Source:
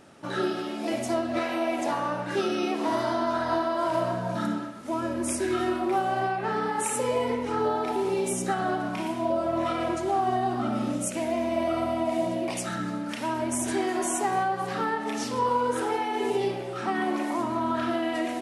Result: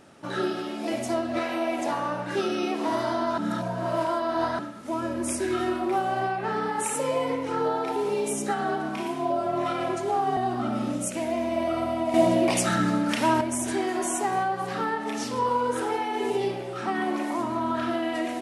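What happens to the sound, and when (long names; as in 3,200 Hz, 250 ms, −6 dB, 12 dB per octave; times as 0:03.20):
0:03.38–0:04.59: reverse
0:06.94–0:10.37: frequency shifter +25 Hz
0:12.14–0:13.41: clip gain +7.5 dB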